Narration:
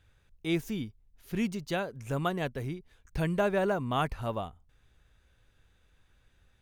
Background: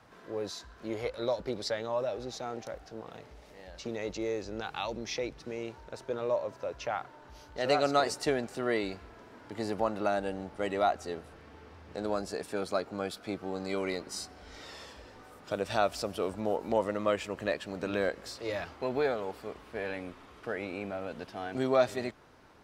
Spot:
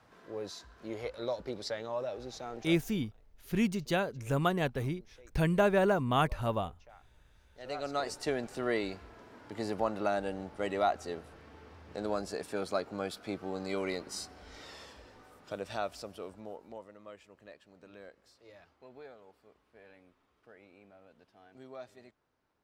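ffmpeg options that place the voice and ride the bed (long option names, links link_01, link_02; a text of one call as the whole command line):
ffmpeg -i stem1.wav -i stem2.wav -filter_complex "[0:a]adelay=2200,volume=1.5dB[link_01];[1:a]volume=18dB,afade=type=out:start_time=2.68:duration=0.4:silence=0.105925,afade=type=in:start_time=7.48:duration=1.08:silence=0.0794328,afade=type=out:start_time=14.39:duration=2.48:silence=0.105925[link_02];[link_01][link_02]amix=inputs=2:normalize=0" out.wav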